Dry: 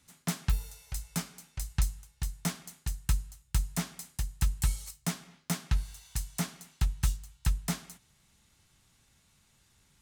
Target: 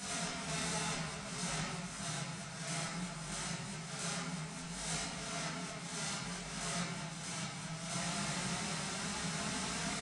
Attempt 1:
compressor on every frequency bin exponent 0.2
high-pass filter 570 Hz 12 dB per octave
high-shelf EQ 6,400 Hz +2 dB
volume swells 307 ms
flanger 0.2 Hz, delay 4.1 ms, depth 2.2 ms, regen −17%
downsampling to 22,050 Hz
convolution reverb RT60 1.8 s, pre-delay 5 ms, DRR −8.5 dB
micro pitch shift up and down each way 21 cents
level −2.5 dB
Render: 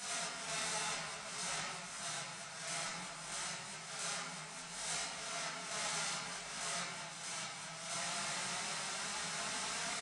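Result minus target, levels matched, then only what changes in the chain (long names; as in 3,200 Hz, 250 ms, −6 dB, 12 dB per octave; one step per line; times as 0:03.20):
250 Hz band −11.0 dB
change: high-pass filter 260 Hz 12 dB per octave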